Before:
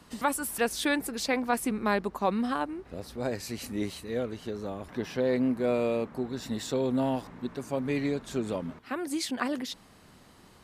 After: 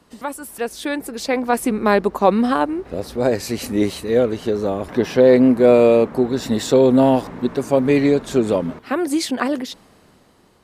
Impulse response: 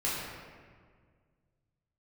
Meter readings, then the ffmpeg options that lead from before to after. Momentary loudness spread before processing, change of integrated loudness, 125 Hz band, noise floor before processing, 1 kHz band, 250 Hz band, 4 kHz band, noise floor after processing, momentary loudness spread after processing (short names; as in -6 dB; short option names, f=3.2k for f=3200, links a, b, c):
10 LU, +13.0 dB, +11.0 dB, -56 dBFS, +10.0 dB, +12.5 dB, +7.0 dB, -54 dBFS, 14 LU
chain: -af "dynaudnorm=f=410:g=7:m=15dB,equalizer=f=460:t=o:w=1.6:g=5.5,volume=-2.5dB"